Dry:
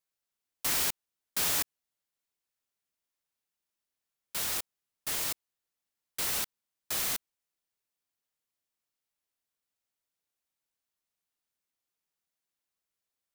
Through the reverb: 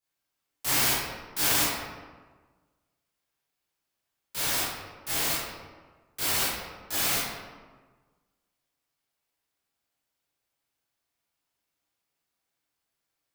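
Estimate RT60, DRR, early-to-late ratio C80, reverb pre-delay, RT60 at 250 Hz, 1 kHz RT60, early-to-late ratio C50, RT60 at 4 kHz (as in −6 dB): 1.4 s, −12.0 dB, 1.5 dB, 16 ms, 1.6 s, 1.4 s, −2.0 dB, 0.80 s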